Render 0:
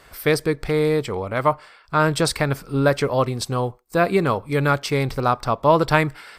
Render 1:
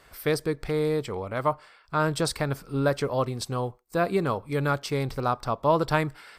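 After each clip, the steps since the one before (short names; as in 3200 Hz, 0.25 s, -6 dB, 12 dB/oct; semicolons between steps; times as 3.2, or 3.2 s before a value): dynamic EQ 2200 Hz, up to -4 dB, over -35 dBFS, Q 1.8; gain -6 dB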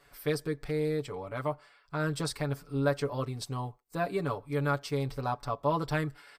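comb 7 ms, depth 84%; gain -8.5 dB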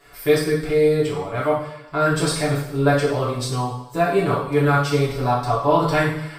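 two-slope reverb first 0.68 s, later 1.8 s, from -18 dB, DRR -6.5 dB; gain +5.5 dB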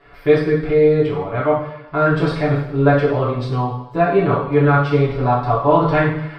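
air absorption 350 m; gain +4.5 dB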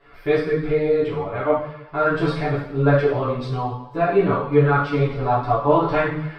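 ensemble effect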